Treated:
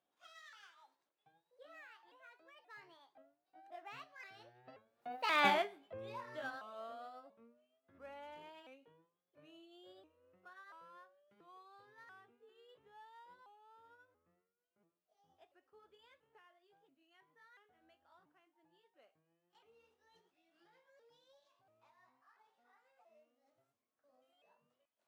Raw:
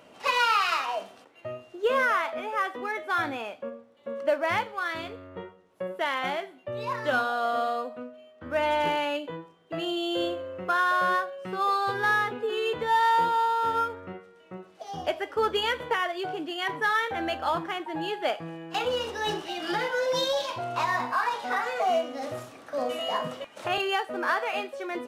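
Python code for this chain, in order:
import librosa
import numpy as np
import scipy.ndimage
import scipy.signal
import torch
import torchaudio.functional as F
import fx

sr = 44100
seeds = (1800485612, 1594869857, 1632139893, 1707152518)

y = fx.pitch_ramps(x, sr, semitones=4.0, every_ms=607)
y = fx.doppler_pass(y, sr, speed_mps=44, closest_m=3.9, pass_at_s=5.47)
y = y * librosa.db_to_amplitude(2.0)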